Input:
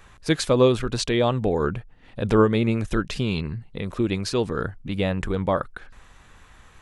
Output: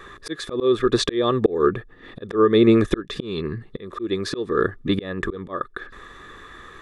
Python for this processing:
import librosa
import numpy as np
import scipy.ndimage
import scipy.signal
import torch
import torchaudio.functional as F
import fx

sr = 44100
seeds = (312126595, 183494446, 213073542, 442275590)

y = fx.small_body(x, sr, hz=(380.0, 1200.0, 1700.0, 3500.0), ring_ms=20, db=18)
y = fx.auto_swell(y, sr, attack_ms=478.0)